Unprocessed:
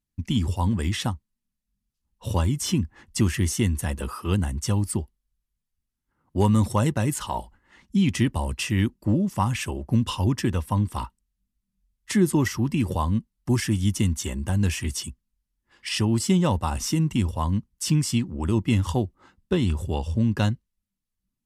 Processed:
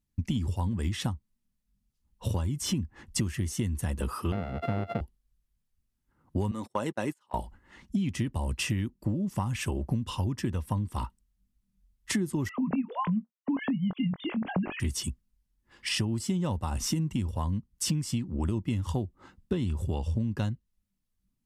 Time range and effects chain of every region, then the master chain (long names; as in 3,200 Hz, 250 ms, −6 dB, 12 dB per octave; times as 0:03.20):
0:04.32–0:05.01: samples sorted by size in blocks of 64 samples + high-pass filter 140 Hz + high-frequency loss of the air 480 metres
0:06.51–0:07.34: noise gate −25 dBFS, range −34 dB + high-pass filter 350 Hz + high-shelf EQ 5,200 Hz −7.5 dB
0:12.49–0:14.80: three sine waves on the formant tracks + double-tracking delay 22 ms −11 dB
whole clip: low-shelf EQ 420 Hz +5 dB; downward compressor 10 to 1, threshold −26 dBFS